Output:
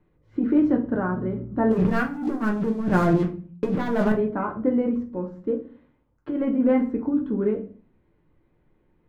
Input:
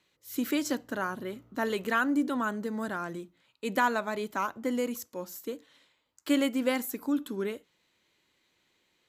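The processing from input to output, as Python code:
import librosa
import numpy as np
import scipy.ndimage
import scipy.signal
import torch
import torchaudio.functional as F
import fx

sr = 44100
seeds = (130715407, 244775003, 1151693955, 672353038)

y = scipy.signal.sosfilt(scipy.signal.butter(2, 1600.0, 'lowpass', fs=sr, output='sos'), x)
y = fx.tilt_eq(y, sr, slope=-4.5)
y = fx.leveller(y, sr, passes=3, at=(1.71, 4.12))
y = fx.over_compress(y, sr, threshold_db=-20.0, ratio=-0.5)
y = fx.room_shoebox(y, sr, seeds[0], volume_m3=31.0, walls='mixed', distance_m=0.42)
y = F.gain(torch.from_numpy(y), -1.5).numpy()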